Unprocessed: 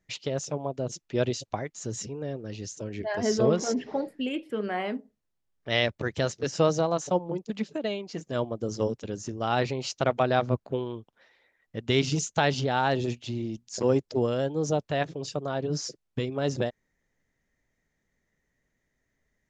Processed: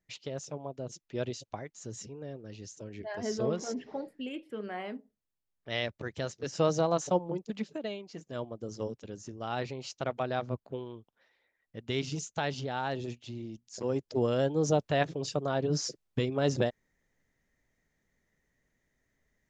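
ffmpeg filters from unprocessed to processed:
-af "volume=2.37,afade=t=in:st=6.39:d=0.55:silence=0.446684,afade=t=out:st=6.94:d=1.15:silence=0.421697,afade=t=in:st=13.92:d=0.5:silence=0.375837"

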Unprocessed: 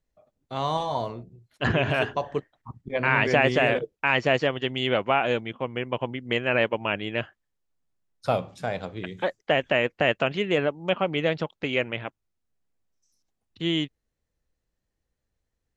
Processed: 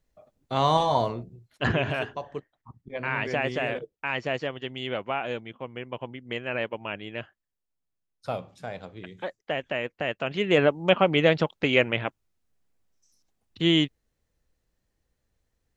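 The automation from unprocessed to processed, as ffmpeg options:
-af "volume=6.68,afade=t=out:st=0.91:d=1.18:silence=0.251189,afade=t=in:st=10.21:d=0.44:silence=0.266073"

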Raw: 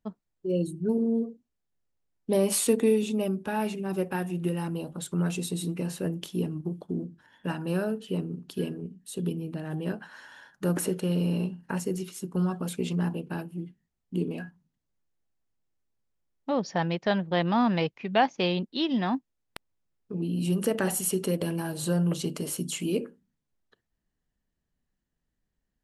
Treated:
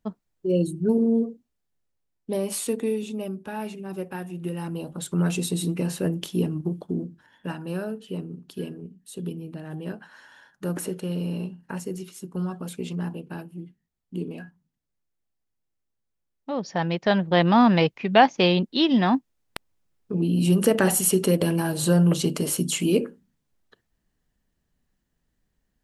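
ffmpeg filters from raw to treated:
-af "volume=13.3,afade=t=out:st=1.22:d=1.2:silence=0.375837,afade=t=in:st=4.37:d=0.98:silence=0.375837,afade=t=out:st=6.68:d=0.94:silence=0.446684,afade=t=in:st=16.52:d=0.92:silence=0.354813"

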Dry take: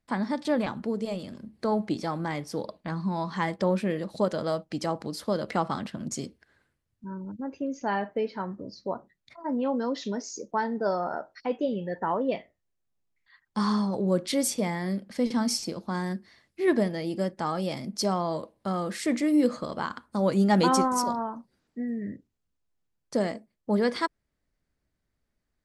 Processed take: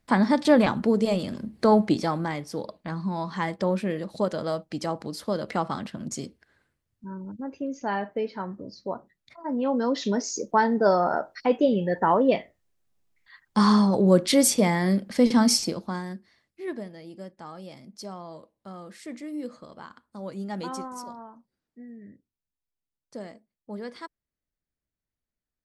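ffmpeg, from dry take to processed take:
-af "volume=5.62,afade=t=out:st=1.74:d=0.64:silence=0.398107,afade=t=in:st=9.5:d=0.74:silence=0.446684,afade=t=out:st=15.54:d=0.49:silence=0.281838,afade=t=out:st=16.03:d=0.79:silence=0.398107"

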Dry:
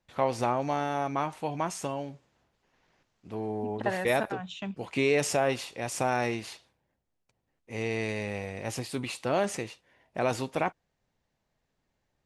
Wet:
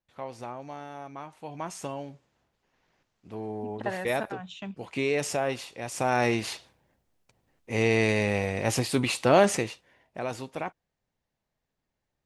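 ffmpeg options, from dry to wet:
-af "volume=2.51,afade=t=in:st=1.33:d=0.52:silence=0.354813,afade=t=in:st=5.93:d=0.58:silence=0.316228,afade=t=out:st=9.43:d=0.78:silence=0.223872"

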